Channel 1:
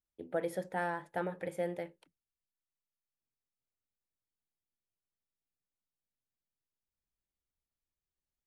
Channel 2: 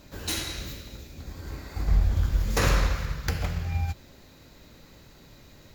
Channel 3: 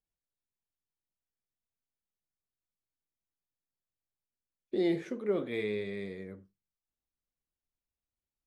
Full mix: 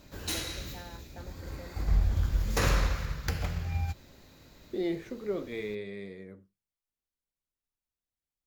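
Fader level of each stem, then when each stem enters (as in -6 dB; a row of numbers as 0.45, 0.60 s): -14.0, -3.5, -2.5 dB; 0.00, 0.00, 0.00 s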